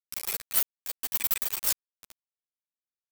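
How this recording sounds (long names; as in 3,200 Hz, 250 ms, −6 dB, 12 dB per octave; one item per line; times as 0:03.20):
sample-and-hold tremolo, depth 95%
a quantiser's noise floor 6 bits, dither none
a shimmering, thickened sound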